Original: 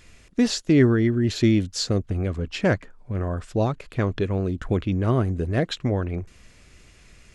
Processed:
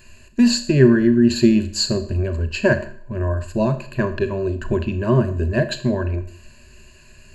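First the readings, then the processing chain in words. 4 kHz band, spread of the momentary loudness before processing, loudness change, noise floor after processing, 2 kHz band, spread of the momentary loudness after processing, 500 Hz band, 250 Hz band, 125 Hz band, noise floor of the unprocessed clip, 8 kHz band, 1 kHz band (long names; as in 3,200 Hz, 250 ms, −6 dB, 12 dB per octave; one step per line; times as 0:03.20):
+5.5 dB, 10 LU, +4.5 dB, −47 dBFS, +5.5 dB, 10 LU, +5.0 dB, +5.0 dB, +2.5 dB, −53 dBFS, +5.0 dB, +2.0 dB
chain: EQ curve with evenly spaced ripples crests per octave 1.4, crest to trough 17 dB
four-comb reverb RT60 0.54 s, combs from 26 ms, DRR 9.5 dB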